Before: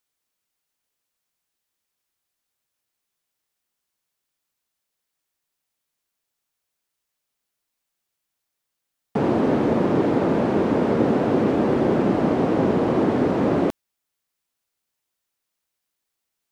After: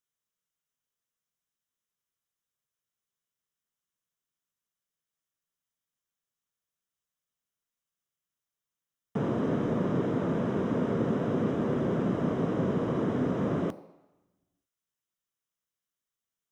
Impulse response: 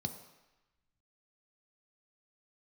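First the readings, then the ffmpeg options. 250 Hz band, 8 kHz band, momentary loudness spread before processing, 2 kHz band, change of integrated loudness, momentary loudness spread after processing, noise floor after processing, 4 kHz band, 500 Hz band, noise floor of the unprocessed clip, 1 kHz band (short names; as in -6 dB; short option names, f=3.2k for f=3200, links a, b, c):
-8.5 dB, n/a, 2 LU, -9.5 dB, -8.5 dB, 3 LU, under -85 dBFS, -9.5 dB, -10.0 dB, -81 dBFS, -11.5 dB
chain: -filter_complex "[0:a]asplit=2[a][b];[1:a]atrim=start_sample=2205,lowshelf=f=450:g=-9[c];[b][c]afir=irnorm=-1:irlink=0,volume=-6dB[d];[a][d]amix=inputs=2:normalize=0,volume=-8.5dB"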